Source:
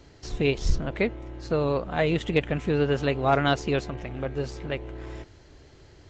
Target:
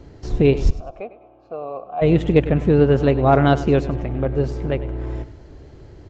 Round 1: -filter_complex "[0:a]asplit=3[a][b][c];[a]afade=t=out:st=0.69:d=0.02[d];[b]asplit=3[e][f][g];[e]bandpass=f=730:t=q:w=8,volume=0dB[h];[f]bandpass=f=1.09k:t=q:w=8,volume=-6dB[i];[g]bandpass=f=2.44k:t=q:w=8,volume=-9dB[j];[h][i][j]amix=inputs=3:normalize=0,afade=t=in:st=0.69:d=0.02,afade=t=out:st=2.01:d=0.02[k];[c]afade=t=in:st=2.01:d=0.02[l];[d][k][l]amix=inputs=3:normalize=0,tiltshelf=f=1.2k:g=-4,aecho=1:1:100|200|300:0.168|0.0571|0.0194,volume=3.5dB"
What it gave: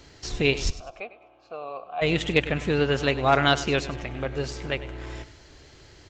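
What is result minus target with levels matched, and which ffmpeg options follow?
1000 Hz band +3.0 dB
-filter_complex "[0:a]asplit=3[a][b][c];[a]afade=t=out:st=0.69:d=0.02[d];[b]asplit=3[e][f][g];[e]bandpass=f=730:t=q:w=8,volume=0dB[h];[f]bandpass=f=1.09k:t=q:w=8,volume=-6dB[i];[g]bandpass=f=2.44k:t=q:w=8,volume=-9dB[j];[h][i][j]amix=inputs=3:normalize=0,afade=t=in:st=0.69:d=0.02,afade=t=out:st=2.01:d=0.02[k];[c]afade=t=in:st=2.01:d=0.02[l];[d][k][l]amix=inputs=3:normalize=0,tiltshelf=f=1.2k:g=7,aecho=1:1:100|200|300:0.168|0.0571|0.0194,volume=3.5dB"

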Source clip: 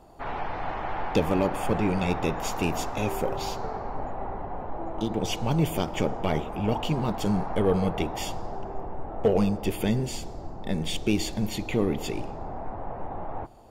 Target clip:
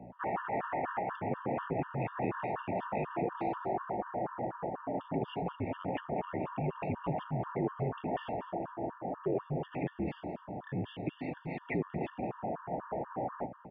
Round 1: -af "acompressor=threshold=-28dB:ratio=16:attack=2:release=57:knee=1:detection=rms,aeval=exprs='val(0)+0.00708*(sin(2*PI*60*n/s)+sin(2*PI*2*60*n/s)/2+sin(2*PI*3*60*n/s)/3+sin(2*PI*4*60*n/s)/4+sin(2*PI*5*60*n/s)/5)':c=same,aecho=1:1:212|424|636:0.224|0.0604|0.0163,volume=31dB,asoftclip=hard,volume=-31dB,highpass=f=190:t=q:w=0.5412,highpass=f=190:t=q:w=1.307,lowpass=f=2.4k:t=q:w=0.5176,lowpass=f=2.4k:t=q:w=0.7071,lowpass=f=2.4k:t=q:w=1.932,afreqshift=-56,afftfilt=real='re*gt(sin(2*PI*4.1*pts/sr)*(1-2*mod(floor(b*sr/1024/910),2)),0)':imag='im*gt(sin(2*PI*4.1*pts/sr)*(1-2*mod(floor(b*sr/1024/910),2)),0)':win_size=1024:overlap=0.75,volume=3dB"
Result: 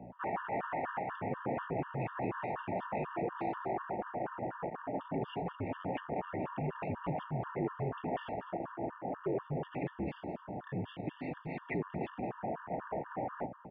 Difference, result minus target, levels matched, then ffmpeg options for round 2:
overloaded stage: distortion +28 dB
-af "acompressor=threshold=-28dB:ratio=16:attack=2:release=57:knee=1:detection=rms,aeval=exprs='val(0)+0.00708*(sin(2*PI*60*n/s)+sin(2*PI*2*60*n/s)/2+sin(2*PI*3*60*n/s)/3+sin(2*PI*4*60*n/s)/4+sin(2*PI*5*60*n/s)/5)':c=same,aecho=1:1:212|424|636:0.224|0.0604|0.0163,volume=23.5dB,asoftclip=hard,volume=-23.5dB,highpass=f=190:t=q:w=0.5412,highpass=f=190:t=q:w=1.307,lowpass=f=2.4k:t=q:w=0.5176,lowpass=f=2.4k:t=q:w=0.7071,lowpass=f=2.4k:t=q:w=1.932,afreqshift=-56,afftfilt=real='re*gt(sin(2*PI*4.1*pts/sr)*(1-2*mod(floor(b*sr/1024/910),2)),0)':imag='im*gt(sin(2*PI*4.1*pts/sr)*(1-2*mod(floor(b*sr/1024/910),2)),0)':win_size=1024:overlap=0.75,volume=3dB"

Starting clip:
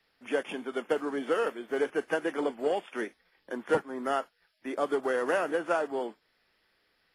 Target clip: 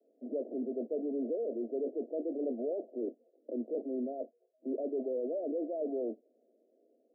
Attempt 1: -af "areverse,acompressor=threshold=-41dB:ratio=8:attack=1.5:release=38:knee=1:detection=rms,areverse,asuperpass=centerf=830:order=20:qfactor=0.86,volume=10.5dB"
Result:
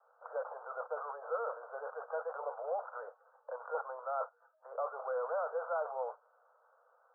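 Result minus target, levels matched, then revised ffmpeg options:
1000 Hz band +17.0 dB
-af "areverse,acompressor=threshold=-41dB:ratio=8:attack=1.5:release=38:knee=1:detection=rms,areverse,asuperpass=centerf=390:order=20:qfactor=0.86,volume=10.5dB"

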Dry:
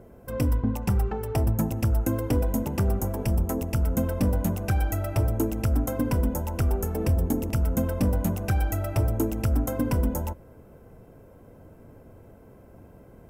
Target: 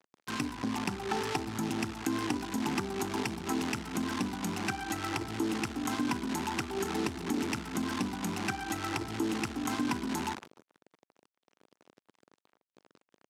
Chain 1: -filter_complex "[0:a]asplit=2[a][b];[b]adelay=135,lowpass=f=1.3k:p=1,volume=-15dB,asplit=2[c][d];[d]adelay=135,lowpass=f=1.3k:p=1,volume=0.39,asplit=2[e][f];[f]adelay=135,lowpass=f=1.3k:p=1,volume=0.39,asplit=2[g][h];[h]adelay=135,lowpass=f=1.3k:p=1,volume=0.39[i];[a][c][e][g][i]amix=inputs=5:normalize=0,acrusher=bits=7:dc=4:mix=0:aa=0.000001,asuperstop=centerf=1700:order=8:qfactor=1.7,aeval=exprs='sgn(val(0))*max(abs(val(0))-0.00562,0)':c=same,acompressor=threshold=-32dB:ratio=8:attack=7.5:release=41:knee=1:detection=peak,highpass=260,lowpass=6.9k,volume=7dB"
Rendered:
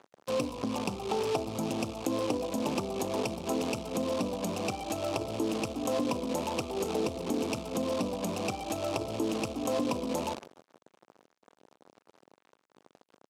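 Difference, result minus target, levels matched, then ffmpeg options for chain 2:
500 Hz band +6.5 dB
-filter_complex "[0:a]asplit=2[a][b];[b]adelay=135,lowpass=f=1.3k:p=1,volume=-15dB,asplit=2[c][d];[d]adelay=135,lowpass=f=1.3k:p=1,volume=0.39,asplit=2[e][f];[f]adelay=135,lowpass=f=1.3k:p=1,volume=0.39,asplit=2[g][h];[h]adelay=135,lowpass=f=1.3k:p=1,volume=0.39[i];[a][c][e][g][i]amix=inputs=5:normalize=0,acrusher=bits=7:dc=4:mix=0:aa=0.000001,asuperstop=centerf=550:order=8:qfactor=1.7,aeval=exprs='sgn(val(0))*max(abs(val(0))-0.00562,0)':c=same,acompressor=threshold=-32dB:ratio=8:attack=7.5:release=41:knee=1:detection=peak,highpass=260,lowpass=6.9k,volume=7dB"

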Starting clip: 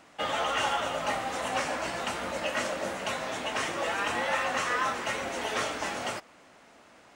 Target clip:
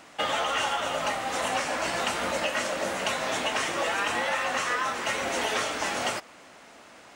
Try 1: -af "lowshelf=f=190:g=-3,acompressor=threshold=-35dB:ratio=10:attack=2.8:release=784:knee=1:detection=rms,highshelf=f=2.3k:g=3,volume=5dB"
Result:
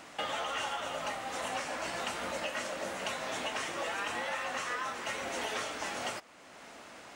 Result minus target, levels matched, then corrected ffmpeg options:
compressor: peak gain reduction +8 dB
-af "lowshelf=f=190:g=-3,acompressor=threshold=-26dB:ratio=10:attack=2.8:release=784:knee=1:detection=rms,highshelf=f=2.3k:g=3,volume=5dB"

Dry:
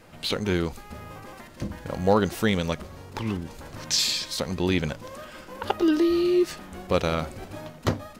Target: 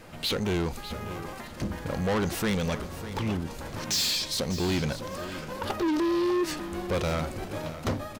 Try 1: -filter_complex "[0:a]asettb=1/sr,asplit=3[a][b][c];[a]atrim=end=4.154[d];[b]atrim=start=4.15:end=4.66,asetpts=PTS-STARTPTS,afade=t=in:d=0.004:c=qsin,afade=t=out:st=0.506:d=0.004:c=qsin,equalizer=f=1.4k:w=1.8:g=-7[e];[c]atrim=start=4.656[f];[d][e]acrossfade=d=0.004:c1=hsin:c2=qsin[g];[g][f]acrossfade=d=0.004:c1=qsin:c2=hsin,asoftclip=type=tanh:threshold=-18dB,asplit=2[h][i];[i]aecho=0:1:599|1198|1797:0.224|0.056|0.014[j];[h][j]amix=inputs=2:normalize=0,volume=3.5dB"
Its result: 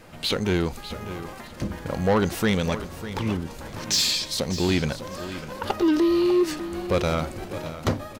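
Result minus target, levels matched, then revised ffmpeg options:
soft clip: distortion -8 dB
-filter_complex "[0:a]asettb=1/sr,asplit=3[a][b][c];[a]atrim=end=4.154[d];[b]atrim=start=4.15:end=4.66,asetpts=PTS-STARTPTS,afade=t=in:d=0.004:c=qsin,afade=t=out:st=0.506:d=0.004:c=qsin,equalizer=f=1.4k:w=1.8:g=-7[e];[c]atrim=start=4.656[f];[d][e]acrossfade=d=0.004:c1=hsin:c2=qsin[g];[g][f]acrossfade=d=0.004:c1=qsin:c2=hsin,asoftclip=type=tanh:threshold=-27dB,asplit=2[h][i];[i]aecho=0:1:599|1198|1797:0.224|0.056|0.014[j];[h][j]amix=inputs=2:normalize=0,volume=3.5dB"

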